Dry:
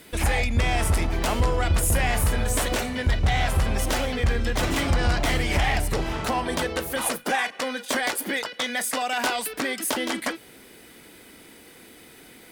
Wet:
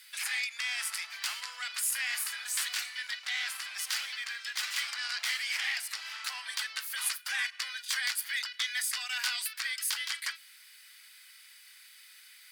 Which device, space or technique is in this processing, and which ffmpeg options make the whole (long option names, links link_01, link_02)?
headphones lying on a table: -af "highpass=frequency=1500:width=0.5412,highpass=frequency=1500:width=1.3066,equalizer=frequency=4700:width_type=o:width=0.34:gain=7.5,volume=-4.5dB"